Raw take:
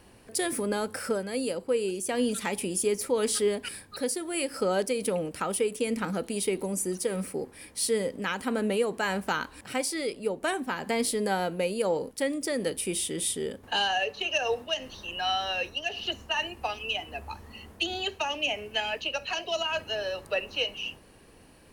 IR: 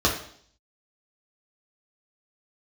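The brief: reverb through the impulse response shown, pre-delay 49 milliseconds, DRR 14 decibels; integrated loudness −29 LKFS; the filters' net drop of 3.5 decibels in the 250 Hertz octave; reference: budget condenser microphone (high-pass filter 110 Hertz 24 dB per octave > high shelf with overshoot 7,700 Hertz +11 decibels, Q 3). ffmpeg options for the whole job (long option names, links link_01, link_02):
-filter_complex "[0:a]equalizer=frequency=250:width_type=o:gain=-4.5,asplit=2[link_01][link_02];[1:a]atrim=start_sample=2205,adelay=49[link_03];[link_02][link_03]afir=irnorm=-1:irlink=0,volume=-29.5dB[link_04];[link_01][link_04]amix=inputs=2:normalize=0,highpass=frequency=110:width=0.5412,highpass=frequency=110:width=1.3066,highshelf=frequency=7700:width_type=q:width=3:gain=11,volume=-7.5dB"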